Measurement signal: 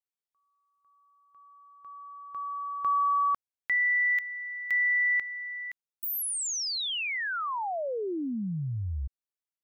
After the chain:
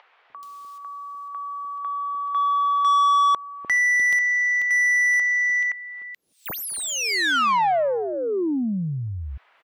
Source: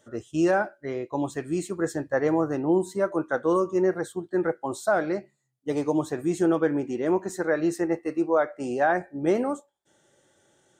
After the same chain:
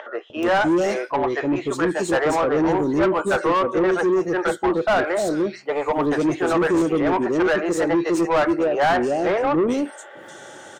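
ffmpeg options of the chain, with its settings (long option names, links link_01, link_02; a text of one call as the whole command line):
ffmpeg -i in.wav -filter_complex "[0:a]acompressor=mode=upward:threshold=-42dB:ratio=2.5:attack=15:release=165:knee=2.83:detection=peak,acrossover=split=460|2900[link_01][link_02][link_03];[link_01]adelay=300[link_04];[link_03]adelay=430[link_05];[link_04][link_02][link_05]amix=inputs=3:normalize=0,asplit=2[link_06][link_07];[link_07]highpass=frequency=720:poles=1,volume=25dB,asoftclip=type=tanh:threshold=-10.5dB[link_08];[link_06][link_08]amix=inputs=2:normalize=0,lowpass=frequency=2100:poles=1,volume=-6dB" out.wav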